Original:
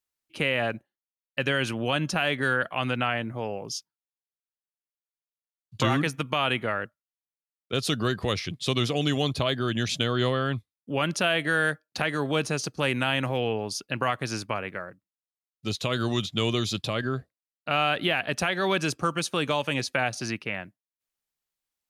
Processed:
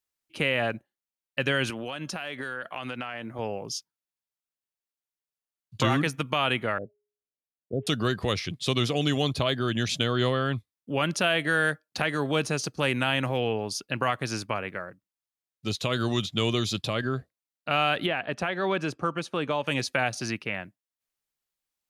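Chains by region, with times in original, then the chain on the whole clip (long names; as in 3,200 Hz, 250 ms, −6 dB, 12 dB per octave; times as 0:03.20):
0:01.70–0:03.39: high-pass filter 250 Hz 6 dB per octave + downward compressor, threshold −30 dBFS
0:06.78–0:07.87: elliptic low-pass filter 680 Hz + hum removal 415.8 Hz, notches 2 + bad sample-rate conversion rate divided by 6×, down none, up filtered
0:18.06–0:19.67: low-pass filter 1,600 Hz 6 dB per octave + low-shelf EQ 130 Hz −7 dB
whole clip: no processing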